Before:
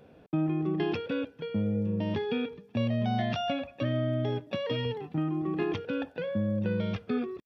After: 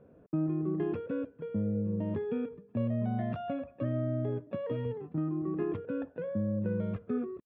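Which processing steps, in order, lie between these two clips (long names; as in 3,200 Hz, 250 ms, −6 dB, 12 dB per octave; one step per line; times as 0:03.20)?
Chebyshev low-pass filter 990 Hz, order 2
parametric band 810 Hz −11 dB 0.37 octaves
level −1.5 dB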